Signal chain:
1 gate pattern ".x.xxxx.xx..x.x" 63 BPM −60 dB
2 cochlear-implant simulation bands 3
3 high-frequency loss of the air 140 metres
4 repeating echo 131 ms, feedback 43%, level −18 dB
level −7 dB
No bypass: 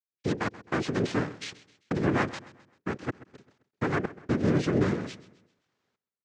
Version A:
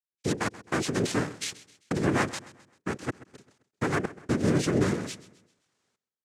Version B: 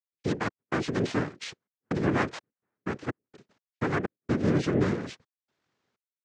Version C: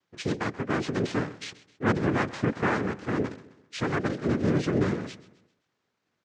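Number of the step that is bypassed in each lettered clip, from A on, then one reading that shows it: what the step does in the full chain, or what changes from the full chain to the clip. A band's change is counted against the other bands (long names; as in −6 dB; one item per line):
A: 3, 8 kHz band +10.5 dB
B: 4, echo-to-direct ratio −17.0 dB to none audible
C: 1, change in integrated loudness +1.5 LU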